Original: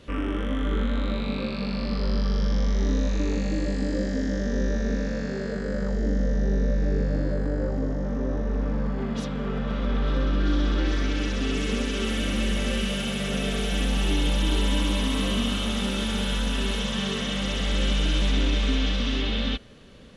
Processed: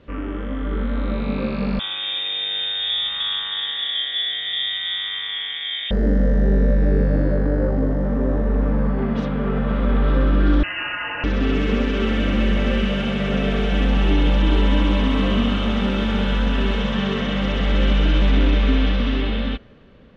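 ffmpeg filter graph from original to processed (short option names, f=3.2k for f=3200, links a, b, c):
-filter_complex "[0:a]asettb=1/sr,asplit=3[a][b][c];[a]atrim=end=1.794[d];[b]atrim=start=1.79:end=5.91,asetpts=PTS-STARTPTS,afade=t=in:d=0.004:c=qsin,afade=t=out:st=4.116:d=0.004:c=qsin,aecho=1:1:7.4:0.97,atrim=end_sample=181692,lowpass=f=3.1k:t=q:w=0.5098,lowpass=f=3.1k:t=q:w=0.6013,lowpass=f=3.1k:t=q:w=0.9,lowpass=f=3.1k:t=q:w=2.563,afreqshift=-3700[e];[c]atrim=start=5.906[f];[d][e]acrossfade=d=0.004:c1=hsin:c2=qsin[g];[g][f]acrossfade=d=0.004:c1=qsin:c2=hsin,asettb=1/sr,asplit=3[h][i][j];[h]atrim=end=10.634[k];[i]atrim=start=10.63:end=11.24,asetpts=PTS-STARTPTS,afade=t=in:d=0.004:c=qsin,afade=t=out:st=0.606:d=0.004:c=qsin,highpass=f=350:w=0.5412,highpass=f=350:w=1.3066,aecho=1:1:5.2:0.75,atrim=end_sample=26901,lowpass=f=2.7k:t=q:w=0.5098,lowpass=f=2.7k:t=q:w=0.6013,lowpass=f=2.7k:t=q:w=0.9,lowpass=f=2.7k:t=q:w=2.563,afreqshift=-3200[l];[j]atrim=start=11.236[m];[k][l]acrossfade=d=0.004:c1=hsin:c2=qsin[n];[n][m]acrossfade=d=0.004:c1=qsin:c2=hsin,lowpass=2.3k,dynaudnorm=f=210:g=11:m=7dB"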